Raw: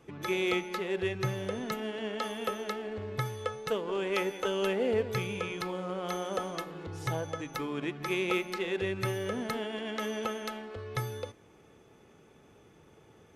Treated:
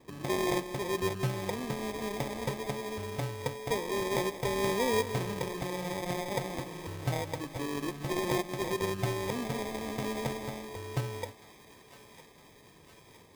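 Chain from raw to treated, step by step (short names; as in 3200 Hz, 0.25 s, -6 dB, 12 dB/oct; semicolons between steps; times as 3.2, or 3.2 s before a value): LPF 4500 Hz 12 dB/oct; sample-and-hold 31×; on a send: thinning echo 0.962 s, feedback 74%, high-pass 820 Hz, level -16 dB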